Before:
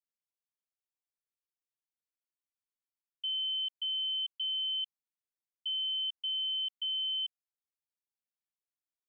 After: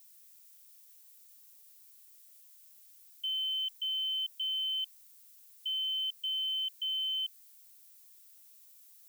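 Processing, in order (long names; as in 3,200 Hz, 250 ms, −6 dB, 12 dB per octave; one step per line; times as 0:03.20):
background noise violet −58 dBFS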